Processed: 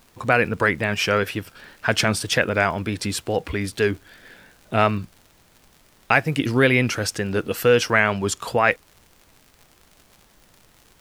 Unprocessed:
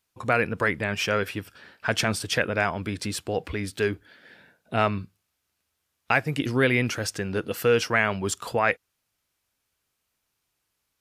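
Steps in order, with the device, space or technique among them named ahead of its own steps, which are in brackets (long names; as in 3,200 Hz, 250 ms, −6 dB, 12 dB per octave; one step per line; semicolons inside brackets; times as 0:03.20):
vinyl LP (tape wow and flutter; surface crackle 77 per second −41 dBFS; pink noise bed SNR 33 dB)
0:07.99–0:08.40: high-shelf EQ 11,000 Hz −6 dB
level +4.5 dB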